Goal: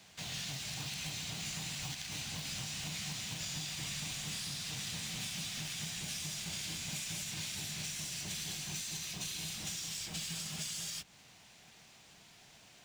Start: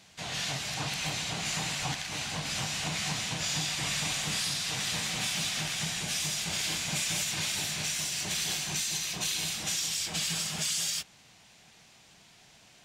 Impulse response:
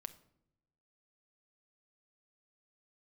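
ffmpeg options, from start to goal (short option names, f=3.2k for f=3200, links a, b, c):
-filter_complex "[0:a]acrusher=bits=3:mode=log:mix=0:aa=0.000001,acrossover=split=260|2400[a][b][c];[a]acompressor=threshold=-42dB:ratio=4[d];[b]acompressor=threshold=-52dB:ratio=4[e];[c]acompressor=threshold=-38dB:ratio=4[f];[d][e][f]amix=inputs=3:normalize=0,volume=-2dB"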